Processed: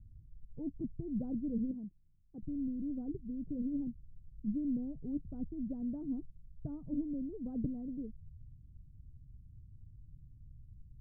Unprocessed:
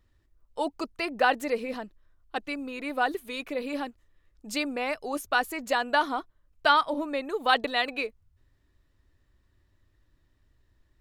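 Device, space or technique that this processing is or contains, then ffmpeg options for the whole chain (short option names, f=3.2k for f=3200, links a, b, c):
the neighbour's flat through the wall: -filter_complex "[0:a]lowpass=f=190:w=0.5412,lowpass=f=190:w=1.3066,equalizer=f=140:t=o:w=0.79:g=7.5,asettb=1/sr,asplit=3[a][b][c];[a]atrim=end=1.714[d];[b]atrim=start=1.71:end=2.43,asetpts=PTS-STARTPTS,afade=t=in:d=0.004:c=qsin,afade=t=out:st=0.716:d=0.004:c=qsin,aemphasis=mode=production:type=riaa[e];[c]atrim=start=2.426[f];[d][e]acrossfade=d=0.004:c1=hsin:c2=qsin[g];[g][f]acrossfade=d=0.004:c1=qsin:c2=hsin,volume=11.5dB"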